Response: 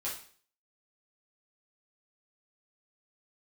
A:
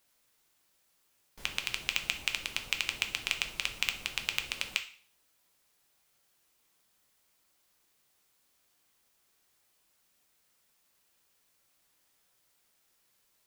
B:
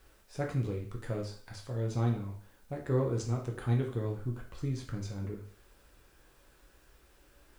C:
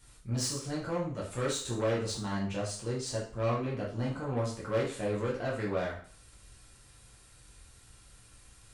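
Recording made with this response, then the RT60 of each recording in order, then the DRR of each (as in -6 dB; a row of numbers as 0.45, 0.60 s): C; 0.45, 0.45, 0.45 s; 5.5, 0.0, -6.5 dB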